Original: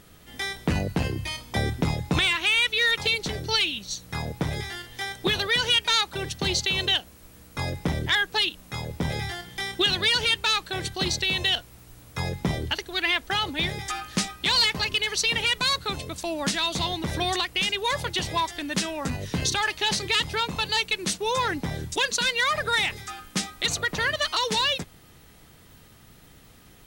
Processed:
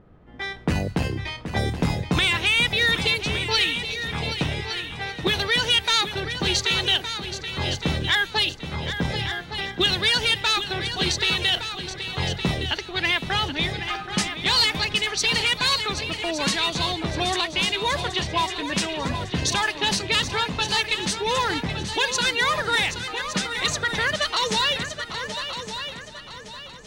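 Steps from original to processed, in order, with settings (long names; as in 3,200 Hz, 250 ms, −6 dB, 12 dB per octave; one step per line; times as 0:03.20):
low-pass that shuts in the quiet parts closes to 940 Hz, open at −20.5 dBFS
echo machine with several playback heads 388 ms, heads second and third, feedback 41%, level −10 dB
level +1.5 dB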